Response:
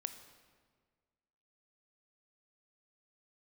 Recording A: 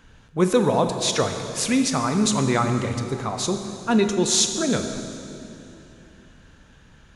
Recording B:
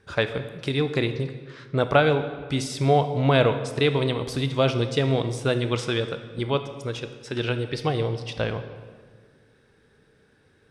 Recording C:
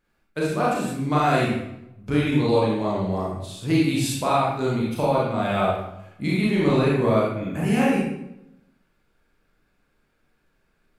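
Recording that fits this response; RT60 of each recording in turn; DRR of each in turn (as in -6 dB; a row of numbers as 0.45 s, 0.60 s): B; 2.9 s, 1.7 s, 0.85 s; 6.0 dB, 9.0 dB, -6.5 dB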